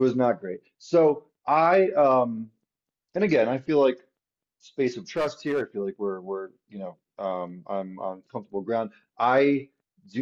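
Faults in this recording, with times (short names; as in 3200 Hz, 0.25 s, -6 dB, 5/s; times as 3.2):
5.17–5.62 clipped -21 dBFS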